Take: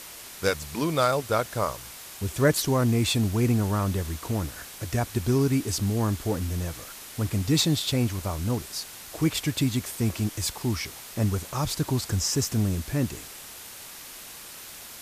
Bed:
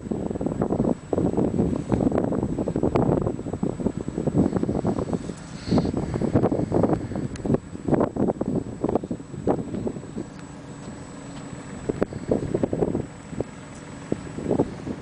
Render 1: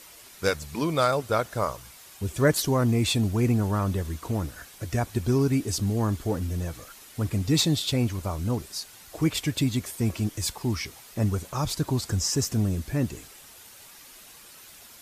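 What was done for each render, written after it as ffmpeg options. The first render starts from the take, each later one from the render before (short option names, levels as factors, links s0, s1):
-af "afftdn=nr=8:nf=-43"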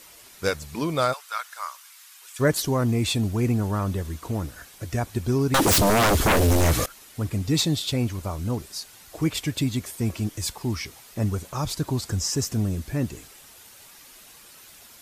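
-filter_complex "[0:a]asplit=3[s0][s1][s2];[s0]afade=t=out:st=1.12:d=0.02[s3];[s1]highpass=f=1100:w=0.5412,highpass=f=1100:w=1.3066,afade=t=in:st=1.12:d=0.02,afade=t=out:st=2.39:d=0.02[s4];[s2]afade=t=in:st=2.39:d=0.02[s5];[s3][s4][s5]amix=inputs=3:normalize=0,asettb=1/sr,asplit=3[s6][s7][s8];[s6]atrim=end=5.544[s9];[s7]atrim=start=5.54:end=6.86,asetpts=PTS-STARTPTS,afade=t=in:d=0.004:c=qsin,afade=t=out:st=1.316:d=0.004:c=qsin,aeval=exprs='0.178*sin(PI/2*6.31*val(0)/0.178)':c=same[s10];[s8]atrim=start=6.856[s11];[s9][s10]acrossfade=d=0.004:c1=hsin:c2=qsin[s12];[s12][s11]acrossfade=d=0.004:c1=qsin:c2=hsin"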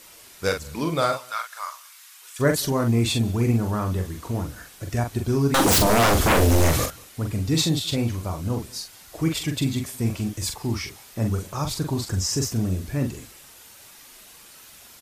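-filter_complex "[0:a]asplit=2[s0][s1];[s1]adelay=43,volume=0.531[s2];[s0][s2]amix=inputs=2:normalize=0,asplit=2[s3][s4];[s4]adelay=186.6,volume=0.0562,highshelf=f=4000:g=-4.2[s5];[s3][s5]amix=inputs=2:normalize=0"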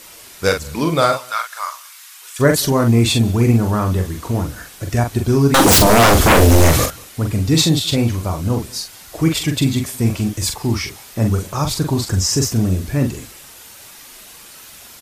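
-af "volume=2.37,alimiter=limit=0.794:level=0:latency=1"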